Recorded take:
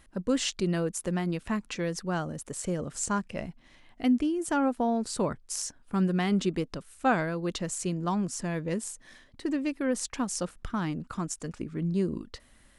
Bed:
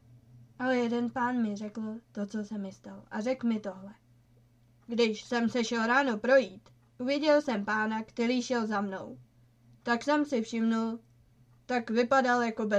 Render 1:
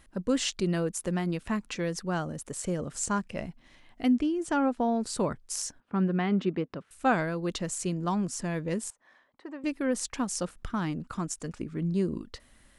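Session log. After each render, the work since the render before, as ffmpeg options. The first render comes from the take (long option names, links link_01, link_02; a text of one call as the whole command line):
ffmpeg -i in.wav -filter_complex "[0:a]asettb=1/sr,asplit=3[link_01][link_02][link_03];[link_01]atrim=end=4.134[link_04];[link_02]atrim=start=4.13:end=5,asetpts=PTS-STARTPTS,afade=type=in:duration=0.004:curve=qsin,afade=type=out:start_time=0.866:duration=0.004:curve=qsin,lowpass=6800[link_05];[link_03]atrim=start=4.996[link_06];[link_04][link_05]acrossfade=duration=0.004:curve1=hsin:curve2=qsin[link_07];[link_07][link_06]acrossfade=duration=0.004:curve1=qsin:curve2=hsin,asettb=1/sr,asplit=3[link_08][link_09][link_10];[link_08]atrim=end=5.804[link_11];[link_09]atrim=start=5.8:end=6.91,asetpts=PTS-STARTPTS,afade=type=in:duration=0.004:curve=qsin,afade=type=out:start_time=1.106:duration=0.004:curve=qsin,highpass=120,lowpass=2500[link_12];[link_10]atrim=start=6.906[link_13];[link_11][link_12]acrossfade=duration=0.004:curve1=hsin:curve2=qsin[link_14];[link_14][link_13]acrossfade=duration=0.004:curve1=qsin:curve2=hsin,asettb=1/sr,asplit=3[link_15][link_16][link_17];[link_15]atrim=end=8.904[link_18];[link_16]atrim=start=8.9:end=9.64,asetpts=PTS-STARTPTS,afade=type=in:duration=0.004:curve=qsin,afade=type=out:start_time=0.736:duration=0.004:curve=qsin,bandpass=frequency=950:width_type=q:width=1.4[link_19];[link_17]atrim=start=9.636[link_20];[link_18][link_19]acrossfade=duration=0.004:curve1=hsin:curve2=qsin[link_21];[link_21][link_20]acrossfade=duration=0.004:curve1=qsin:curve2=hsin" out.wav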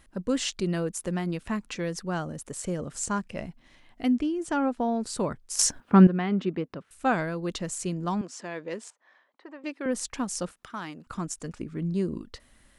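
ffmpeg -i in.wav -filter_complex "[0:a]asettb=1/sr,asplit=3[link_01][link_02][link_03];[link_01]atrim=end=8.214[link_04];[link_02]atrim=start=8.21:end=9.86,asetpts=PTS-STARTPTS,afade=type=in:duration=0.004:curve=qsin,afade=type=out:start_time=1.646:duration=0.004:curve=qsin,highpass=370,lowpass=5400[link_05];[link_03]atrim=start=9.856[link_06];[link_04][link_05]acrossfade=duration=0.004:curve1=hsin:curve2=qsin[link_07];[link_07][link_06]acrossfade=duration=0.004:curve1=qsin:curve2=hsin,asettb=1/sr,asplit=3[link_08][link_09][link_10];[link_08]atrim=end=10.524[link_11];[link_09]atrim=start=10.52:end=11.07,asetpts=PTS-STARTPTS,afade=type=in:duration=0.004:curve=qsin,afade=type=out:start_time=0.546:duration=0.004:curve=qsin,highpass=frequency=680:poles=1[link_12];[link_10]atrim=start=11.066[link_13];[link_11][link_12]acrossfade=duration=0.004:curve1=hsin:curve2=qsin[link_14];[link_14][link_13]acrossfade=duration=0.004:curve1=qsin:curve2=hsin,asplit=3[link_15][link_16][link_17];[link_15]atrim=end=5.592[link_18];[link_16]atrim=start=5.588:end=6.072,asetpts=PTS-STARTPTS,volume=12dB[link_19];[link_17]atrim=start=6.068[link_20];[link_18][link_19]acrossfade=duration=0.004:curve1=hsin:curve2=hsin[link_21];[link_21][link_20]acrossfade=duration=0.004:curve1=hsin:curve2=hsin" out.wav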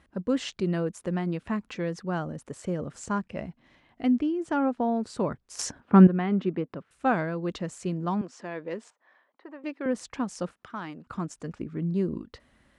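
ffmpeg -i in.wav -af "highpass=64,aemphasis=mode=reproduction:type=75fm" out.wav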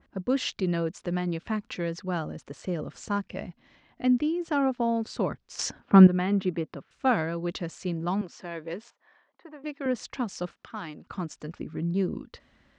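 ffmpeg -i in.wav -af "lowpass=frequency=6200:width=0.5412,lowpass=frequency=6200:width=1.3066,adynamicequalizer=threshold=0.00562:dfrequency=2100:dqfactor=0.7:tfrequency=2100:tqfactor=0.7:attack=5:release=100:ratio=0.375:range=3:mode=boostabove:tftype=highshelf" out.wav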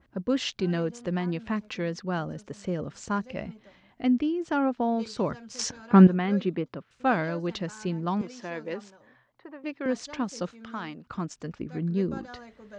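ffmpeg -i in.wav -i bed.wav -filter_complex "[1:a]volume=-18dB[link_01];[0:a][link_01]amix=inputs=2:normalize=0" out.wav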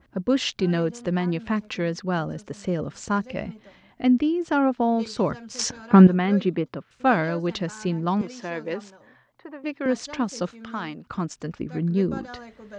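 ffmpeg -i in.wav -af "volume=4.5dB,alimiter=limit=-3dB:level=0:latency=1" out.wav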